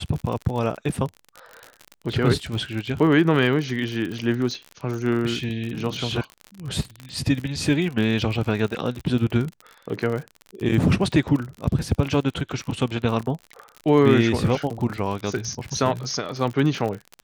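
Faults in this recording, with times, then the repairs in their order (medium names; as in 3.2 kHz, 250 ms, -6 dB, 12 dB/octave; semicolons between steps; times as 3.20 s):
crackle 51 per s -28 dBFS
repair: de-click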